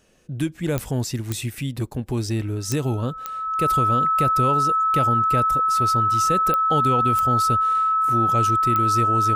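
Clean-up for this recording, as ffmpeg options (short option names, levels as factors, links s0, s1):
-af "adeclick=t=4,bandreject=f=1300:w=30"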